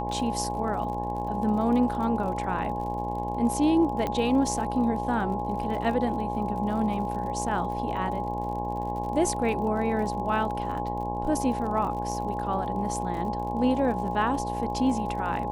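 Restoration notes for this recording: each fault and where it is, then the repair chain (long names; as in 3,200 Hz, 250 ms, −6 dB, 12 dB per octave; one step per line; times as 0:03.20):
mains buzz 60 Hz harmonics 18 −33 dBFS
surface crackle 49 per second −36 dBFS
whistle 830 Hz −31 dBFS
0:04.07: click −16 dBFS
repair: click removal
hum removal 60 Hz, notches 18
notch filter 830 Hz, Q 30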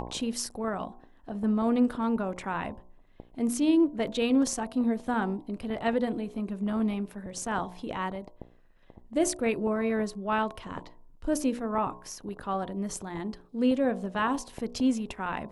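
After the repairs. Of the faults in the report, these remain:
0:04.07: click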